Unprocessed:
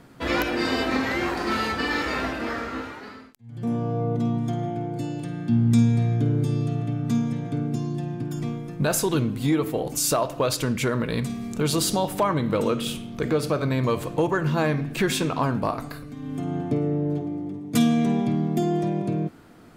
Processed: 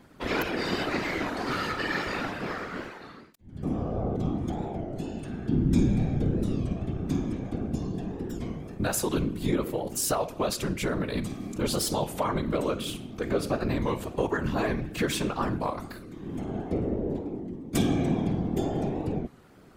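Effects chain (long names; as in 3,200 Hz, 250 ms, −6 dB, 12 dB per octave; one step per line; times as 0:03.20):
random phases in short frames
wow of a warped record 33 1/3 rpm, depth 160 cents
level −4.5 dB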